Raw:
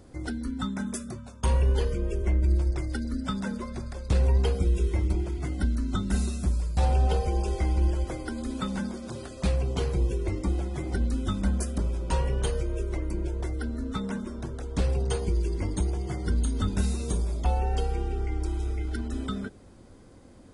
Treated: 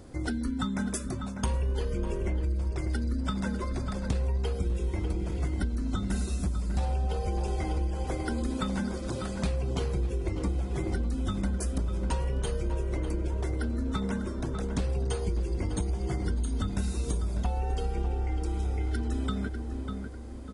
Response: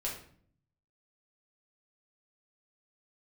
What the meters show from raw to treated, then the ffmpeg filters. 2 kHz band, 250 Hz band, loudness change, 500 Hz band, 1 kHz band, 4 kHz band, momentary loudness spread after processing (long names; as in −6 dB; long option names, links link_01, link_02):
−1.0 dB, −0.5 dB, −2.5 dB, −2.0 dB, −2.0 dB, −2.0 dB, 2 LU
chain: -filter_complex "[0:a]asplit=2[link_01][link_02];[link_02]adelay=597,lowpass=frequency=2200:poles=1,volume=-8.5dB,asplit=2[link_03][link_04];[link_04]adelay=597,lowpass=frequency=2200:poles=1,volume=0.41,asplit=2[link_05][link_06];[link_06]adelay=597,lowpass=frequency=2200:poles=1,volume=0.41,asplit=2[link_07][link_08];[link_08]adelay=597,lowpass=frequency=2200:poles=1,volume=0.41,asplit=2[link_09][link_10];[link_10]adelay=597,lowpass=frequency=2200:poles=1,volume=0.41[link_11];[link_03][link_05][link_07][link_09][link_11]amix=inputs=5:normalize=0[link_12];[link_01][link_12]amix=inputs=2:normalize=0,acompressor=threshold=-29dB:ratio=6,volume=3dB"